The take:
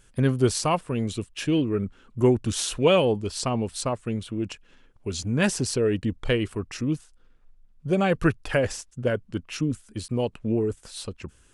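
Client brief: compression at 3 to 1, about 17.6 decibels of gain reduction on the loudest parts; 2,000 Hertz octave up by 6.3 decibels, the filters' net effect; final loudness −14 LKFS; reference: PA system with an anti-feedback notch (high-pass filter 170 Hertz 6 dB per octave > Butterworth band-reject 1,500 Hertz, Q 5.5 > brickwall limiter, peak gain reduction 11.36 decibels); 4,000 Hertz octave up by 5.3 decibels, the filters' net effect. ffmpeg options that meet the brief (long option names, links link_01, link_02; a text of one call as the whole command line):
ffmpeg -i in.wav -af "equalizer=frequency=2000:width_type=o:gain=9,equalizer=frequency=4000:width_type=o:gain=3.5,acompressor=threshold=-39dB:ratio=3,highpass=frequency=170:poles=1,asuperstop=centerf=1500:order=8:qfactor=5.5,volume=28.5dB,alimiter=limit=-3dB:level=0:latency=1" out.wav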